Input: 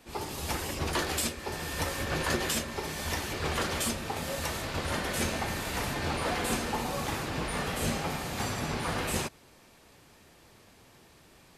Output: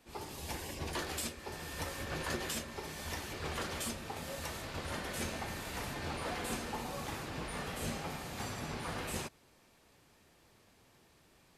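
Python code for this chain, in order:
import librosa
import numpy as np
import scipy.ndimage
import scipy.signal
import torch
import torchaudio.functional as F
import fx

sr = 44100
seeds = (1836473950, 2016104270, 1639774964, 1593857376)

y = fx.notch(x, sr, hz=1300.0, q=5.3, at=(0.37, 0.97))
y = y * librosa.db_to_amplitude(-8.0)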